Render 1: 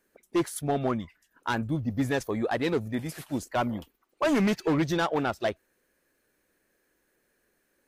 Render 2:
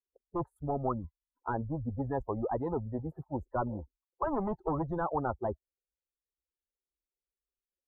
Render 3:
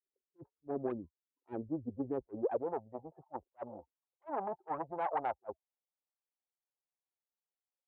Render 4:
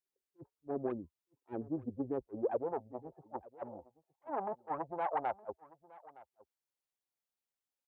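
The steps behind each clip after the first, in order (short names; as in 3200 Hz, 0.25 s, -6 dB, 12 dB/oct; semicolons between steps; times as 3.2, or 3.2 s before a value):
per-bin expansion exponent 2; elliptic low-pass 880 Hz, stop band 60 dB; spectral compressor 4:1
self-modulated delay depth 0.31 ms; band-pass sweep 350 Hz -> 780 Hz, 2.29–2.85; attack slew limiter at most 540 dB/s; gain +3 dB
echo 0.915 s -21 dB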